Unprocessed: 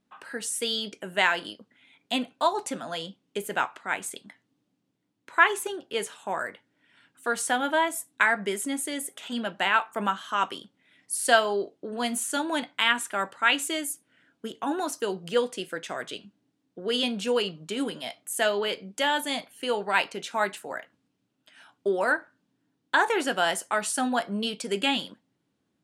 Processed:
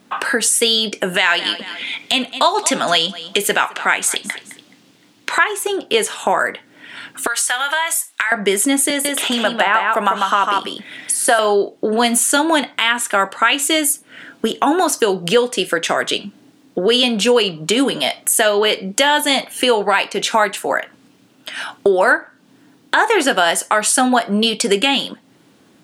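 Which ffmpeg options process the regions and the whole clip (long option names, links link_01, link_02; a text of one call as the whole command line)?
ffmpeg -i in.wav -filter_complex "[0:a]asettb=1/sr,asplit=3[link_01][link_02][link_03];[link_01]atrim=end=1.144[link_04];[link_02]atrim=start=1.14:end=5.44,asetpts=PTS-STARTPTS,afade=type=in:duration=0.004:curve=qsin,afade=type=out:start_time=4.296:duration=0.004:curve=qsin,equalizer=frequency=3800:width=0.44:gain=8,aecho=1:1:213|426:0.0794|0.0175,atrim=end_sample=189630[link_05];[link_03]atrim=start=5.436[link_06];[link_04][link_05]acrossfade=duration=0.004:curve1=hsin:curve2=qsin[link_07];[link_07][link_06]acrossfade=duration=0.004:curve1=qsin:curve2=hsin,asettb=1/sr,asplit=3[link_08][link_09][link_10];[link_08]atrim=end=7.274[link_11];[link_09]atrim=start=7.27:end=8.32,asetpts=PTS-STARTPTS,afade=type=in:duration=0.004:curve=qsin,afade=type=out:start_time=1.046:duration=0.004:curve=qsin,highpass=1300,acompressor=threshold=-36dB:ratio=3:attack=3.2:release=140:knee=1:detection=peak[link_12];[link_10]atrim=start=8.316[link_13];[link_11][link_12]acrossfade=duration=0.004:curve1=hsin:curve2=qsin[link_14];[link_14][link_13]acrossfade=duration=0.004:curve1=qsin:curve2=hsin,asettb=1/sr,asplit=3[link_15][link_16][link_17];[link_15]atrim=end=8.904[link_18];[link_16]atrim=start=8.9:end=11.39,asetpts=PTS-STARTPTS,afade=type=in:duration=0.004:curve=qsin,afade=type=out:start_time=2.486:duration=0.004:curve=qsin,acrossover=split=560|1700[link_19][link_20][link_21];[link_19]acompressor=threshold=-40dB:ratio=4[link_22];[link_20]acompressor=threshold=-25dB:ratio=4[link_23];[link_21]acompressor=threshold=-40dB:ratio=4[link_24];[link_22][link_23][link_24]amix=inputs=3:normalize=0,aecho=1:1:147:0.631,atrim=end_sample=109809[link_25];[link_17]atrim=start=11.386[link_26];[link_18][link_25]acrossfade=duration=0.004:curve1=hsin:curve2=qsin[link_27];[link_27][link_26]acrossfade=duration=0.004:curve1=qsin:curve2=hsin,highpass=frequency=210:poles=1,acompressor=threshold=-45dB:ratio=2.5,alimiter=level_in=27.5dB:limit=-1dB:release=50:level=0:latency=1,volume=-1dB" out.wav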